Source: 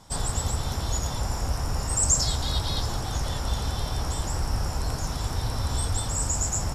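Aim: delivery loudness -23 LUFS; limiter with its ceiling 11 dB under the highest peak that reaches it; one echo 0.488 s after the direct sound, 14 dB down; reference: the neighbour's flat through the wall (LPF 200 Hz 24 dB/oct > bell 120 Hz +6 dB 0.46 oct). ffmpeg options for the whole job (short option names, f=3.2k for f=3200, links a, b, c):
-af "alimiter=limit=-20.5dB:level=0:latency=1,lowpass=f=200:w=0.5412,lowpass=f=200:w=1.3066,equalizer=f=120:t=o:w=0.46:g=6,aecho=1:1:488:0.2,volume=9dB"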